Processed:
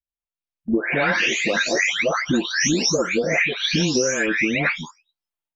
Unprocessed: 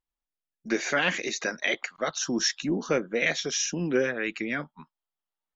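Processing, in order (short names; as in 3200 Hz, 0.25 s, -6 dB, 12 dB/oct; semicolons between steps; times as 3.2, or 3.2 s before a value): spectral delay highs late, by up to 0.601 s; bell 2500 Hz +4 dB 0.48 oct; AGC gain up to 9 dB; bell 68 Hz +9.5 dB 0.61 oct; compressor 6:1, threshold -25 dBFS, peak gain reduction 12 dB; gate -38 dBFS, range -16 dB; gain +7.5 dB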